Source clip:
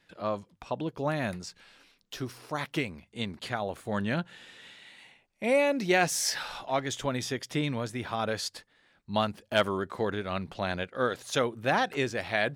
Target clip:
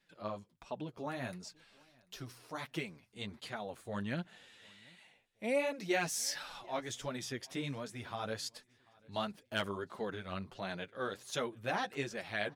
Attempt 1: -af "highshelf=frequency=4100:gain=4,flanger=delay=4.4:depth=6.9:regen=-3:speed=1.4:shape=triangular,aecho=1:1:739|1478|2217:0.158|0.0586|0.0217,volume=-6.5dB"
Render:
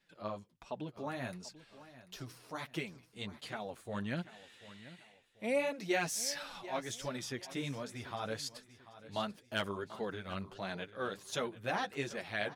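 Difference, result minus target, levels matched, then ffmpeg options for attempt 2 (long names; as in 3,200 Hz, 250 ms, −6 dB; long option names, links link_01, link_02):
echo-to-direct +11 dB
-af "highshelf=frequency=4100:gain=4,flanger=delay=4.4:depth=6.9:regen=-3:speed=1.4:shape=triangular,aecho=1:1:739|1478:0.0447|0.0165,volume=-6.5dB"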